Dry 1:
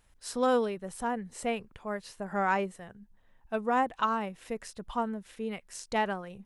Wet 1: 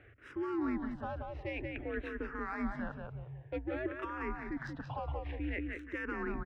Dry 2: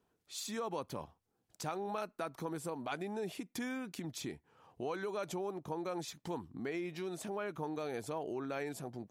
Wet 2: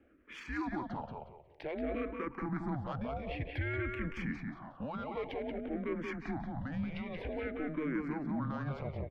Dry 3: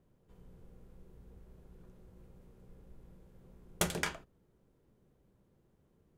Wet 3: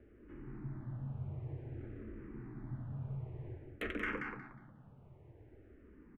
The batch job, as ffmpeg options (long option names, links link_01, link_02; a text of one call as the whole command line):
ffmpeg -i in.wav -filter_complex "[0:a]equalizer=frequency=2700:width_type=o:width=0.8:gain=4,adynamicsmooth=sensitivity=3:basefreq=1600,equalizer=frequency=125:width_type=o:width=1:gain=-9,equalizer=frequency=500:width_type=o:width=1:gain=5,equalizer=frequency=2000:width_type=o:width=1:gain=10,equalizer=frequency=8000:width_type=o:width=1:gain=-11,areverse,acompressor=threshold=-40dB:ratio=10,areverse,afreqshift=-150,alimiter=level_in=16.5dB:limit=-24dB:level=0:latency=1:release=60,volume=-16.5dB,asplit=2[link_01][link_02];[link_02]adelay=181,lowpass=frequency=4400:poles=1,volume=-4dB,asplit=2[link_03][link_04];[link_04]adelay=181,lowpass=frequency=4400:poles=1,volume=0.3,asplit=2[link_05][link_06];[link_06]adelay=181,lowpass=frequency=4400:poles=1,volume=0.3,asplit=2[link_07][link_08];[link_08]adelay=181,lowpass=frequency=4400:poles=1,volume=0.3[link_09];[link_01][link_03][link_05][link_07][link_09]amix=inputs=5:normalize=0,asplit=2[link_10][link_11];[link_11]afreqshift=-0.53[link_12];[link_10][link_12]amix=inputs=2:normalize=1,volume=13.5dB" out.wav